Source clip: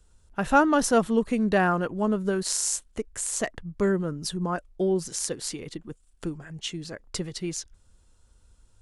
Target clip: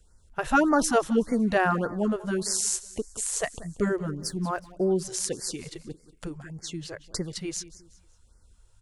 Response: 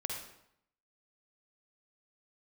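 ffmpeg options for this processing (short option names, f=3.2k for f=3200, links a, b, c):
-filter_complex "[0:a]asplit=2[a][b];[b]aecho=0:1:185|370|555:0.126|0.0478|0.0182[c];[a][c]amix=inputs=2:normalize=0,asettb=1/sr,asplit=3[d][e][f];[d]atrim=end=4.194[g];[e]atrim=start=4.19:end=4.72,asetpts=PTS-STARTPTS,afade=t=in:d=0.004:c=qsin,afade=t=out:st=0.526:d=0.004:c=qsin,aeval=exprs='sgn(val(0))*max(abs(val(0))-0.00168,0)':c=same[h];[f]atrim=start=4.716[i];[g][h]acrossfade=d=0.004:c1=hsin:c2=qsin[j];[j][i]acrossfade=d=0.004:c1=qsin:c2=hsin,afftfilt=real='re*(1-between(b*sr/1024,210*pow(3200/210,0.5+0.5*sin(2*PI*1.7*pts/sr))/1.41,210*pow(3200/210,0.5+0.5*sin(2*PI*1.7*pts/sr))*1.41))':imag='im*(1-between(b*sr/1024,210*pow(3200/210,0.5+0.5*sin(2*PI*1.7*pts/sr))/1.41,210*pow(3200/210,0.5+0.5*sin(2*PI*1.7*pts/sr))*1.41))':win_size=1024:overlap=0.75"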